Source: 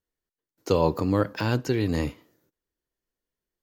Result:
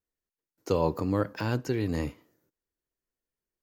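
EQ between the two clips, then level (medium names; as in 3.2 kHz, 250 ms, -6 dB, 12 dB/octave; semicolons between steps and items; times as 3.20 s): peaking EQ 3.6 kHz -4 dB 0.77 oct; -4.0 dB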